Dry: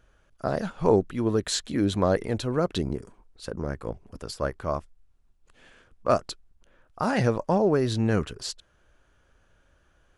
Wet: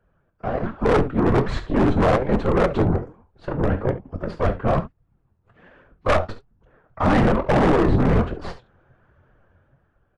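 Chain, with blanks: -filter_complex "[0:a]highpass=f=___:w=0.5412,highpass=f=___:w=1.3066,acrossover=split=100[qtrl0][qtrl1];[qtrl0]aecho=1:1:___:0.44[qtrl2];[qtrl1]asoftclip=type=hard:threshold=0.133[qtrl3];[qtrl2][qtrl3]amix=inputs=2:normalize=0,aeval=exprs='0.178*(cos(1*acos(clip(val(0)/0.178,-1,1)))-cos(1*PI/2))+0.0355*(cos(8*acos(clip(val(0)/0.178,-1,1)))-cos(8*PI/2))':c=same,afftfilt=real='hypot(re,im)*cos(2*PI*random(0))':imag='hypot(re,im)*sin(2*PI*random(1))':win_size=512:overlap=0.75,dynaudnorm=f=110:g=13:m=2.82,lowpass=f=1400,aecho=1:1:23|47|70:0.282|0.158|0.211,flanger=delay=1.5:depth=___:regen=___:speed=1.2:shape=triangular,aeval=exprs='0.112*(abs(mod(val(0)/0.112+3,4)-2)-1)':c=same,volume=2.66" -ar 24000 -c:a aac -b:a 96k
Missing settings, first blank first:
41, 41, 1.1, 9.8, 50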